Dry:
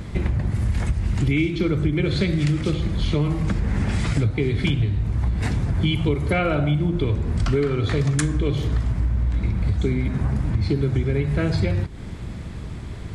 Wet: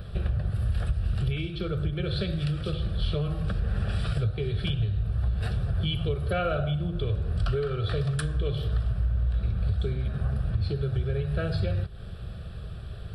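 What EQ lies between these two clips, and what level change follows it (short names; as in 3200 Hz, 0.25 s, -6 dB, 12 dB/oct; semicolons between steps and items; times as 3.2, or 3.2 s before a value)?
fixed phaser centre 1400 Hz, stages 8; -3.5 dB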